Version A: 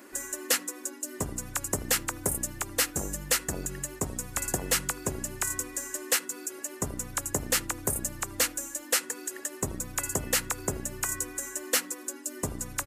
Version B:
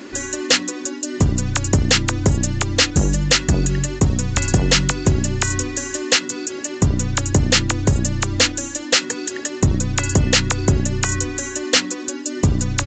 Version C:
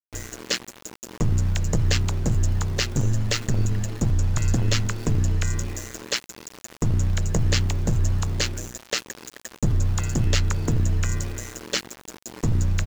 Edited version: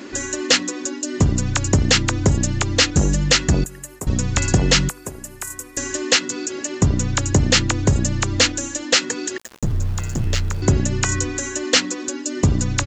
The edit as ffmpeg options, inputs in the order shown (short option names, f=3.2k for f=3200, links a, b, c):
-filter_complex "[0:a]asplit=2[a][b];[1:a]asplit=4[c][d][e][f];[c]atrim=end=3.642[g];[a]atrim=start=3.638:end=4.072[h];[d]atrim=start=4.068:end=4.892[i];[b]atrim=start=4.888:end=5.772[j];[e]atrim=start=5.768:end=9.382[k];[2:a]atrim=start=9.378:end=10.622[l];[f]atrim=start=10.618[m];[g][h]acrossfade=d=0.004:c1=hsin:c2=hsin[n];[n][i]acrossfade=d=0.004:c1=hsin:c2=hsin[o];[o][j]acrossfade=d=0.004:c1=hsin:c2=hsin[p];[p][k]acrossfade=d=0.004:c1=hsin:c2=hsin[q];[q][l]acrossfade=d=0.004:c1=hsin:c2=hsin[r];[r][m]acrossfade=d=0.004:c1=hsin:c2=hsin"